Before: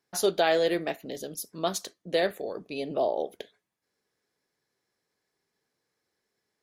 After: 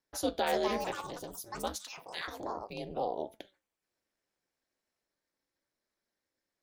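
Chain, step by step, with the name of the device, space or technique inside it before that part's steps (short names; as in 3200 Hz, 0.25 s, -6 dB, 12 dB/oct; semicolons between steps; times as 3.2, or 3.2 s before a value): 1.76–2.28 HPF 1200 Hz 24 dB/oct; echoes that change speed 0.364 s, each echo +6 st, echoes 2, each echo -6 dB; alien voice (ring modulator 120 Hz; flange 1.2 Hz, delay 4.4 ms, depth 1.9 ms, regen +88%)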